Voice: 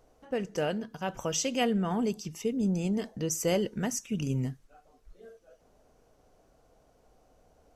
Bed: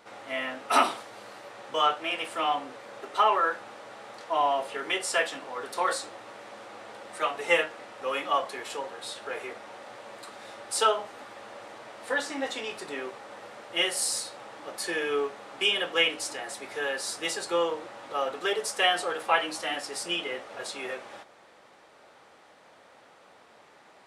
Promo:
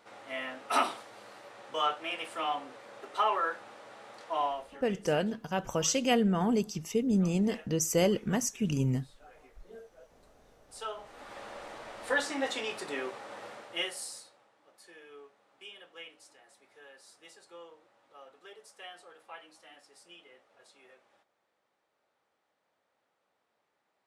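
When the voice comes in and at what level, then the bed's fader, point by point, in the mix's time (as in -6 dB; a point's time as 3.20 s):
4.50 s, +1.5 dB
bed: 4.44 s -5.5 dB
4.92 s -24.5 dB
10.59 s -24.5 dB
11.35 s -0.5 dB
13.50 s -0.5 dB
14.53 s -23.5 dB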